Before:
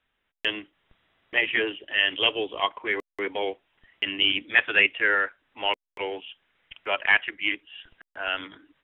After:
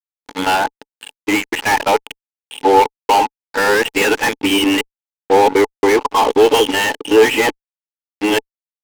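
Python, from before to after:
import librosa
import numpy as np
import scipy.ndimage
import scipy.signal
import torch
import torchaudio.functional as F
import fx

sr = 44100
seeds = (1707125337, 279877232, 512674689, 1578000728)

y = x[::-1].copy()
y = fx.peak_eq(y, sr, hz=820.0, db=11.5, octaves=0.31)
y = fx.fuzz(y, sr, gain_db=35.0, gate_db=-39.0)
y = fx.small_body(y, sr, hz=(280.0, 440.0, 860.0), ring_ms=30, db=12)
y = F.gain(torch.from_numpy(y), -2.5).numpy()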